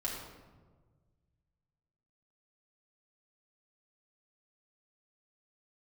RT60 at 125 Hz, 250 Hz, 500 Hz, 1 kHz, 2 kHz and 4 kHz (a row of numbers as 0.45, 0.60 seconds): 2.5, 1.8, 1.6, 1.3, 0.95, 0.75 seconds